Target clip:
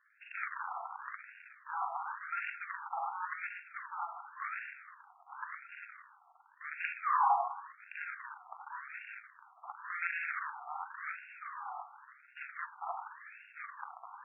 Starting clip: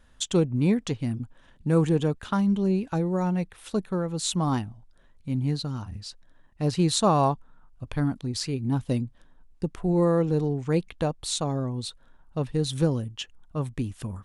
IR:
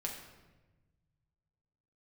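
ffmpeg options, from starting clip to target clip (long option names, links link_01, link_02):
-filter_complex "[0:a]asplit=2[link_01][link_02];[1:a]atrim=start_sample=2205,lowpass=7400,adelay=40[link_03];[link_02][link_03]afir=irnorm=-1:irlink=0,volume=1dB[link_04];[link_01][link_04]amix=inputs=2:normalize=0,acrusher=bits=2:mode=log:mix=0:aa=0.000001,afftfilt=real='re*between(b*sr/1024,960*pow(2000/960,0.5+0.5*sin(2*PI*0.91*pts/sr))/1.41,960*pow(2000/960,0.5+0.5*sin(2*PI*0.91*pts/sr))*1.41)':imag='im*between(b*sr/1024,960*pow(2000/960,0.5+0.5*sin(2*PI*0.91*pts/sr))/1.41,960*pow(2000/960,0.5+0.5*sin(2*PI*0.91*pts/sr))*1.41)':win_size=1024:overlap=0.75,volume=-4dB"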